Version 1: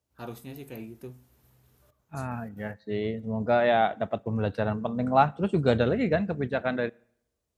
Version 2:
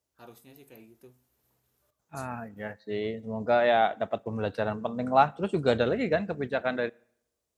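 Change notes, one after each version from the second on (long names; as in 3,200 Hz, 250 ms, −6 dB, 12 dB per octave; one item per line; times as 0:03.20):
first voice −9.0 dB
master: add bass and treble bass −7 dB, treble +3 dB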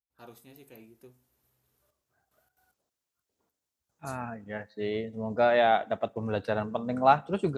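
second voice: entry +1.90 s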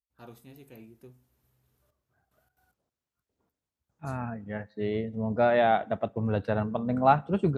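second voice: add high-shelf EQ 3,700 Hz −7 dB
master: add bass and treble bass +7 dB, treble −3 dB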